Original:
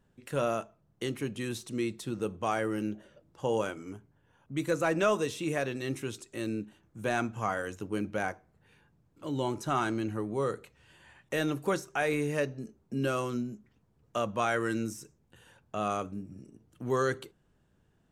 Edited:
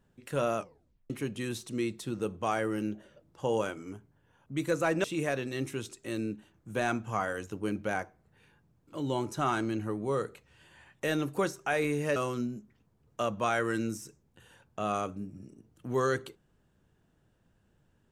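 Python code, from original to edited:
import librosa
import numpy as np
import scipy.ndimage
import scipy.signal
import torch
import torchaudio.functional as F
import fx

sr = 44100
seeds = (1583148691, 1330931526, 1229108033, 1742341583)

y = fx.edit(x, sr, fx.tape_stop(start_s=0.58, length_s=0.52),
    fx.cut(start_s=5.04, length_s=0.29),
    fx.cut(start_s=12.45, length_s=0.67), tone=tone)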